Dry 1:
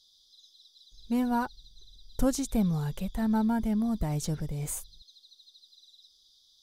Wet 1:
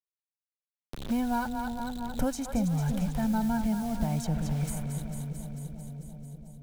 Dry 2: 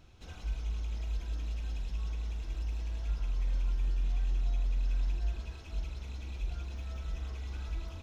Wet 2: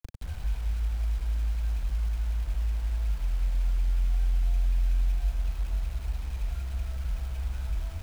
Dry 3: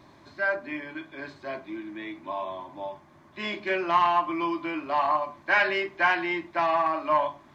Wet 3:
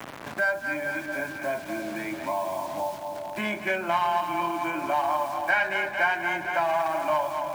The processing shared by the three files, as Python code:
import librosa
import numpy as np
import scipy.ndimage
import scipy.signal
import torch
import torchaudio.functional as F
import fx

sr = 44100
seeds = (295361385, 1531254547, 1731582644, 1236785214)

p1 = fx.wiener(x, sr, points=9)
p2 = p1 + 0.56 * np.pad(p1, (int(1.3 * sr / 1000.0), 0))[:len(p1)]
p3 = fx.quant_dither(p2, sr, seeds[0], bits=8, dither='none')
p4 = p3 + fx.echo_split(p3, sr, split_hz=600.0, low_ms=343, high_ms=222, feedback_pct=52, wet_db=-8.5, dry=0)
p5 = fx.band_squash(p4, sr, depth_pct=70)
y = F.gain(torch.from_numpy(p5), -1.5).numpy()